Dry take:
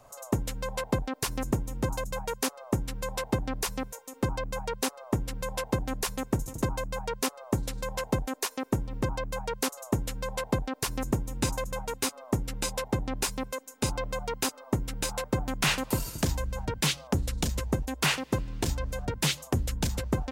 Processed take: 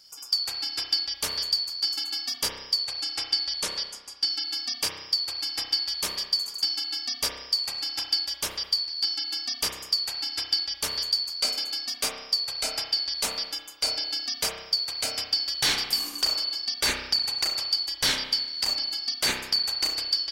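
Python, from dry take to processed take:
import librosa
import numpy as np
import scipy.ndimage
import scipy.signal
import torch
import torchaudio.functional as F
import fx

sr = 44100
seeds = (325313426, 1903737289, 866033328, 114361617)

y = fx.band_shuffle(x, sr, order='4321')
y = fx.lowpass(y, sr, hz=11000.0, slope=24, at=(2.78, 4.3))
y = fx.rev_spring(y, sr, rt60_s=1.0, pass_ms=(31,), chirp_ms=65, drr_db=2.5)
y = F.gain(torch.from_numpy(y), 1.5).numpy()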